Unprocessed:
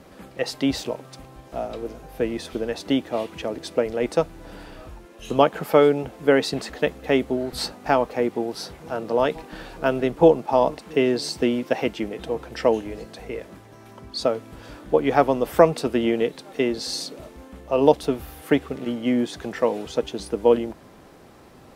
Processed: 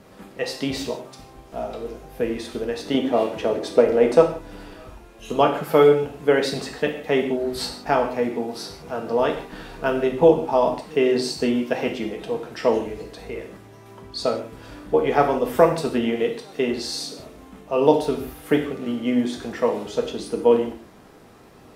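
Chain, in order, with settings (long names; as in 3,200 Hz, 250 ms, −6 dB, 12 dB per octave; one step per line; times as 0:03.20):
0:02.94–0:04.37: parametric band 540 Hz +7 dB 2.9 octaves
reverb whose tail is shaped and stops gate 200 ms falling, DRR 1.5 dB
level −2 dB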